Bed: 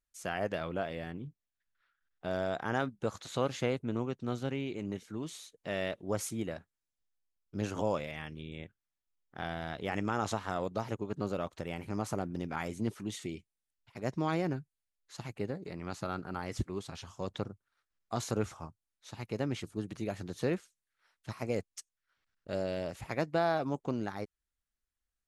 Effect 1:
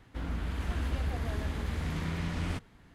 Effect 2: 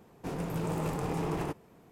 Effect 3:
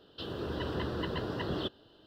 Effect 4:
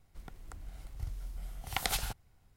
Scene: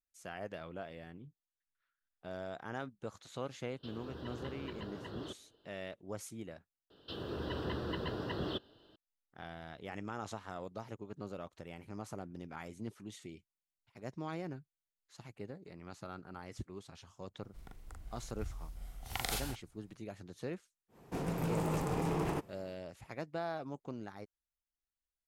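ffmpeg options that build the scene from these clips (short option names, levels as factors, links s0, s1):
-filter_complex "[3:a]asplit=2[s0][s1];[0:a]volume=0.335[s2];[4:a]asplit=2[s3][s4];[s4]adelay=41,volume=0.794[s5];[s3][s5]amix=inputs=2:normalize=0[s6];[s2]asplit=2[s7][s8];[s7]atrim=end=6.904[s9];[s1]atrim=end=2.06,asetpts=PTS-STARTPTS,volume=0.668[s10];[s8]atrim=start=8.956[s11];[s0]atrim=end=2.06,asetpts=PTS-STARTPTS,volume=0.282,afade=t=in:d=0.004:c=hsin,afade=t=out:st=2.056:d=0.004:c=hsin,adelay=160965S[s12];[s6]atrim=end=2.56,asetpts=PTS-STARTPTS,volume=0.501,afade=t=in:d=0.004:c=hsin,afade=t=out:st=2.556:d=0.004:c=hsin,adelay=17390[s13];[2:a]atrim=end=1.91,asetpts=PTS-STARTPTS,volume=0.841,afade=t=in:d=0.1,afade=t=out:st=1.81:d=0.1,adelay=20880[s14];[s9][s10]acrossfade=d=0.004:c1=hsin:c2=hsin[s15];[s15][s11]acrossfade=d=0.004:c1=hsin:c2=hsin[s16];[s16][s12][s13][s14]amix=inputs=4:normalize=0"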